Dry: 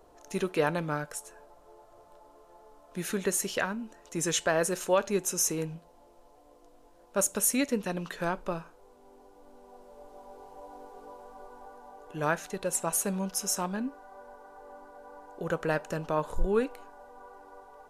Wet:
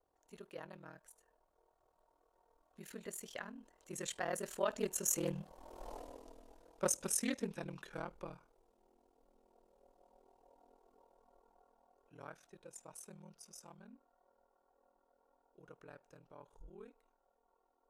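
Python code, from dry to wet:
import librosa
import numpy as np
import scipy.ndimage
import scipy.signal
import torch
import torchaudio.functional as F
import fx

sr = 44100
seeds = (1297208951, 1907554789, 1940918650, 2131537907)

y = fx.doppler_pass(x, sr, speed_mps=21, closest_m=2.4, pass_at_s=5.93)
y = y * np.sin(2.0 * np.pi * 20.0 * np.arange(len(y)) / sr)
y = fx.doppler_dist(y, sr, depth_ms=0.12)
y = F.gain(torch.from_numpy(y), 14.0).numpy()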